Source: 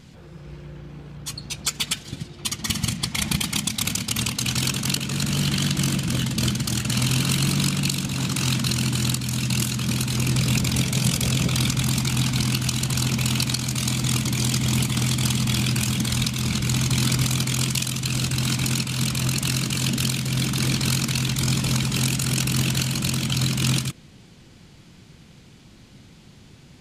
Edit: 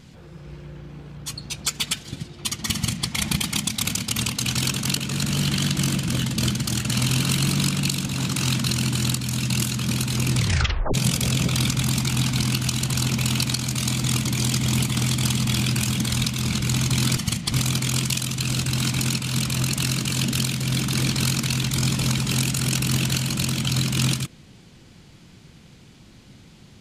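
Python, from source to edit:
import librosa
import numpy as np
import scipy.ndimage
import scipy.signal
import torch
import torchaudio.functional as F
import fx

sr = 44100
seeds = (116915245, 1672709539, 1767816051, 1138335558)

y = fx.edit(x, sr, fx.duplicate(start_s=2.73, length_s=0.35, to_s=17.17),
    fx.tape_stop(start_s=10.36, length_s=0.58), tone=tone)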